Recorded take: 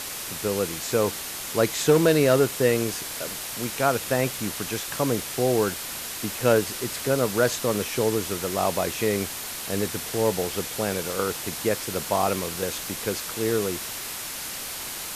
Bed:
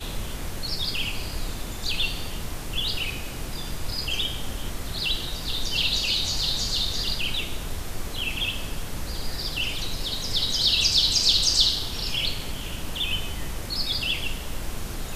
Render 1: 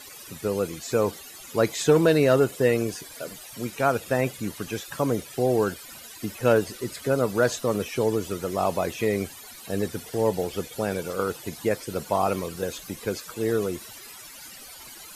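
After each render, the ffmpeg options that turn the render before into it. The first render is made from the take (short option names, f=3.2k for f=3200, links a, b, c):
-af "afftdn=nr=16:nf=-34"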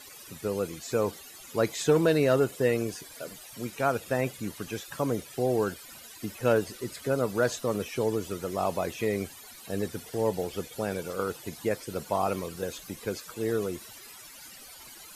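-af "volume=-4dB"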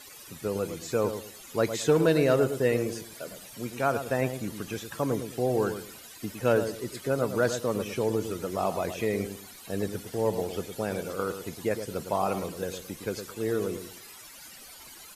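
-filter_complex "[0:a]asplit=2[a][b];[b]adelay=109,lowpass=f=1.1k:p=1,volume=-8dB,asplit=2[c][d];[d]adelay=109,lowpass=f=1.1k:p=1,volume=0.29,asplit=2[e][f];[f]adelay=109,lowpass=f=1.1k:p=1,volume=0.29[g];[a][c][e][g]amix=inputs=4:normalize=0"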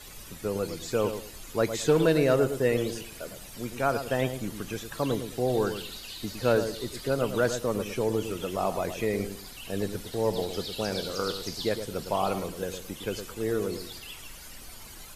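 -filter_complex "[1:a]volume=-18dB[a];[0:a][a]amix=inputs=2:normalize=0"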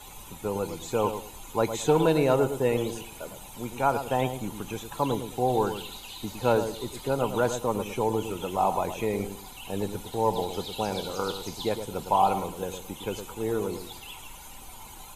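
-af "superequalizer=9b=3.16:11b=0.501:14b=0.398"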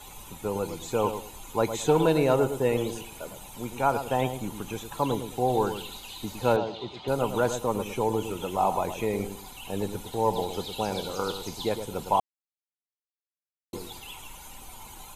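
-filter_complex "[0:a]asettb=1/sr,asplit=3[a][b][c];[a]atrim=end=6.564[d];[b]atrim=start=6.56:end=7.08,asetpts=PTS-STARTPTS,afade=t=in:d=0.004:c=qsin,afade=t=out:st=0.516:d=0.004:c=qsin,highpass=110,equalizer=f=260:t=q:w=4:g=-5,equalizer=f=470:t=q:w=4:g=-4,equalizer=f=720:t=q:w=4:g=7,equalizer=f=1.7k:t=q:w=4:g=-5,equalizer=f=3.1k:t=q:w=4:g=4,lowpass=f=4.4k:w=0.5412,lowpass=f=4.4k:w=1.3066[e];[c]atrim=start=7.076[f];[d][e]acrossfade=d=0.004:c1=hsin:c2=qsin[g];[g][f]acrossfade=d=0.004:c1=qsin:c2=hsin,asplit=3[h][i][j];[h]atrim=end=12.2,asetpts=PTS-STARTPTS,afade=t=out:st=12.196:d=0.004:c=hsin[k];[i]atrim=start=12.2:end=13.73,asetpts=PTS-STARTPTS,volume=0[l];[j]atrim=start=13.73,asetpts=PTS-STARTPTS,afade=t=in:d=0.004:c=hsin[m];[k][l][m]concat=n=3:v=0:a=1"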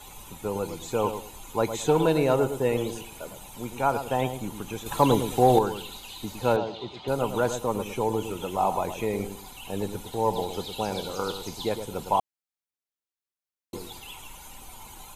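-filter_complex "[0:a]asettb=1/sr,asplit=3[a][b][c];[a]atrim=end=4.864[d];[b]atrim=start=4.86:end=5.59,asetpts=PTS-STARTPTS,afade=t=in:d=0.004:c=qsin,afade=t=out:st=0.726:d=0.004:c=qsin,acontrast=81[e];[c]atrim=start=5.586[f];[d][e]acrossfade=d=0.004:c1=hsin:c2=qsin[g];[g][f]acrossfade=d=0.004:c1=qsin:c2=hsin"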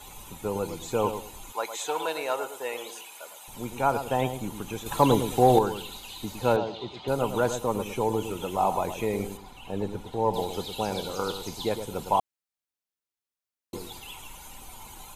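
-filter_complex "[0:a]asettb=1/sr,asplit=3[a][b][c];[a]atrim=end=1.524[d];[b]atrim=start=1.52:end=3.48,asetpts=PTS-STARTPTS,afade=t=in:d=0.004:c=qsin,afade=t=out:st=1.956:d=0.004:c=qsin,highpass=790[e];[c]atrim=start=3.476[f];[d][e]acrossfade=d=0.004:c1=hsin:c2=qsin[g];[g][f]acrossfade=d=0.004:c1=qsin:c2=hsin,asettb=1/sr,asplit=3[h][i][j];[h]atrim=end=9.374[k];[i]atrim=start=9.37:end=10.34,asetpts=PTS-STARTPTS,afade=t=in:d=0.004:c=qsin,afade=t=out:st=0.966:d=0.004:c=qsin,lowpass=f=2.1k:p=1[l];[j]atrim=start=10.336[m];[k][l]acrossfade=d=0.004:c1=hsin:c2=qsin[n];[n][m]acrossfade=d=0.004:c1=qsin:c2=hsin"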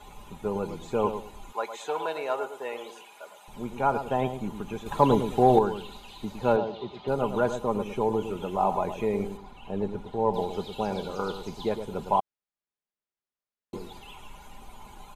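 -af "lowpass=f=1.8k:p=1,aecho=1:1:4.9:0.34"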